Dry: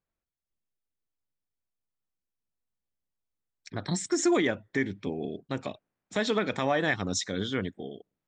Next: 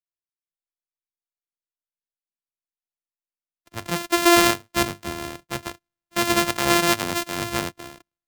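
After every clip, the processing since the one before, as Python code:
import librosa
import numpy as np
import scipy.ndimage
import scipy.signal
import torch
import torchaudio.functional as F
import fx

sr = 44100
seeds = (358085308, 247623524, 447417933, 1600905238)

y = np.r_[np.sort(x[:len(x) // 128 * 128].reshape(-1, 128), axis=1).ravel(), x[len(x) // 128 * 128:]]
y = fx.tilt_shelf(y, sr, db=-3.5, hz=790.0)
y = fx.band_widen(y, sr, depth_pct=70)
y = F.gain(torch.from_numpy(y), 6.5).numpy()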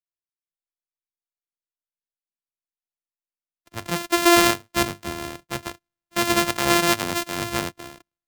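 y = x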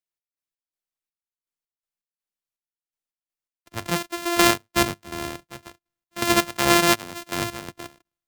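y = fx.step_gate(x, sr, bpm=82, pattern='x.x.xx..', floor_db=-12.0, edge_ms=4.5)
y = F.gain(torch.from_numpy(y), 1.5).numpy()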